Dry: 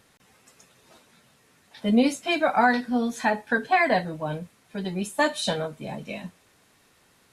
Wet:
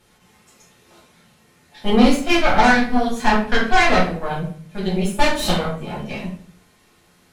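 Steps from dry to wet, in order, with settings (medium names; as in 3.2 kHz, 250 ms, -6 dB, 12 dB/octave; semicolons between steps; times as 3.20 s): Chebyshev shaper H 4 -15 dB, 8 -19 dB, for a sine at -8.5 dBFS; simulated room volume 50 m³, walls mixed, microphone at 1.4 m; trim -3 dB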